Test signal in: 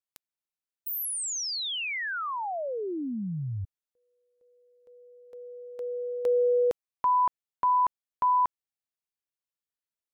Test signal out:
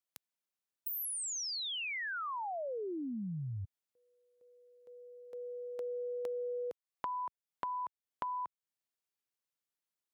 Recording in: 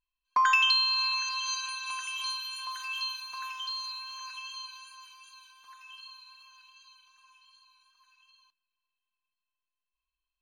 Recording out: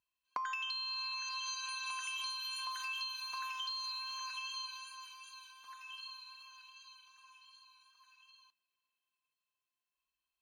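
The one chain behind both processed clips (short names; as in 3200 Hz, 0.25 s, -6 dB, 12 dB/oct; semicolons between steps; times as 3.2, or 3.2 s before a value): HPF 94 Hz 12 dB/oct; compressor 10:1, threshold -37 dBFS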